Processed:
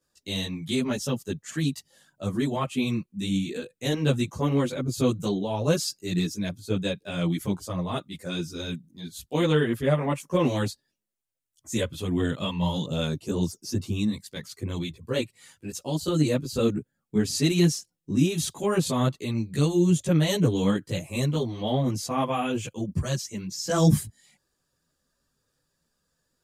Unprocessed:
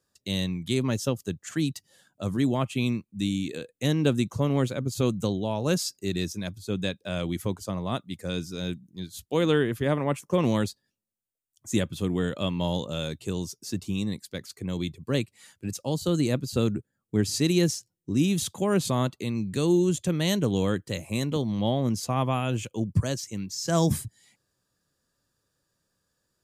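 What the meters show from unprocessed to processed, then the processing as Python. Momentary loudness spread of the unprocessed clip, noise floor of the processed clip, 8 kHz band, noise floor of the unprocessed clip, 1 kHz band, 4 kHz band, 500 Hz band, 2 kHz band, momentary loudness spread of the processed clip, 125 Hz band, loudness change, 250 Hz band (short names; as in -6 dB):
9 LU, -78 dBFS, +0.5 dB, -81 dBFS, +1.0 dB, +1.0 dB, +0.5 dB, +1.0 dB, 11 LU, +1.5 dB, +1.0 dB, +1.0 dB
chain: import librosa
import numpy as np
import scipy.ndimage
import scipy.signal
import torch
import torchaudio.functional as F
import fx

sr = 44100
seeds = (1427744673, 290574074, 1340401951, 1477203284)

y = fx.chorus_voices(x, sr, voices=6, hz=0.62, base_ms=16, depth_ms=4.2, mix_pct=65)
y = y * librosa.db_to_amplitude(3.5)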